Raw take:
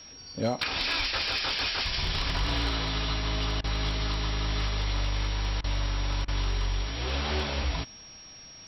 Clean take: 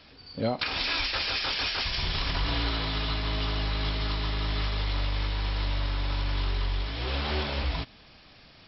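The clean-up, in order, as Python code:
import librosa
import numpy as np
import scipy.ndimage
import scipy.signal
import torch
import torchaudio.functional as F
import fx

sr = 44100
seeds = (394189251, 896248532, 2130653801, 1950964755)

y = fx.fix_declip(x, sr, threshold_db=-19.5)
y = fx.notch(y, sr, hz=5600.0, q=30.0)
y = fx.fix_interpolate(y, sr, at_s=(3.61, 5.61, 6.25), length_ms=29.0)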